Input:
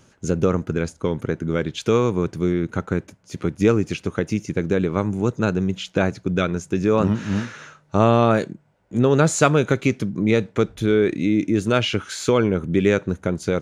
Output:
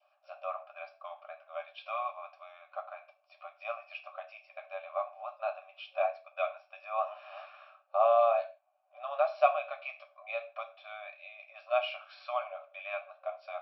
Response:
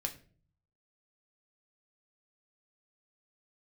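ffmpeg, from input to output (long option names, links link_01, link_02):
-filter_complex "[1:a]atrim=start_sample=2205,afade=type=out:start_time=0.22:duration=0.01,atrim=end_sample=10143[link_01];[0:a][link_01]afir=irnorm=-1:irlink=0,adynamicequalizer=threshold=0.0126:dfrequency=1300:dqfactor=2.6:tfrequency=1300:tqfactor=2.6:attack=5:release=100:ratio=0.375:range=2:mode=cutabove:tftype=bell,asplit=3[link_02][link_03][link_04];[link_02]bandpass=frequency=730:width_type=q:width=8,volume=0dB[link_05];[link_03]bandpass=frequency=1090:width_type=q:width=8,volume=-6dB[link_06];[link_04]bandpass=frequency=2440:width_type=q:width=8,volume=-9dB[link_07];[link_05][link_06][link_07]amix=inputs=3:normalize=0,afftfilt=real='re*between(b*sr/4096,550,5700)':imag='im*between(b*sr/4096,550,5700)':win_size=4096:overlap=0.75"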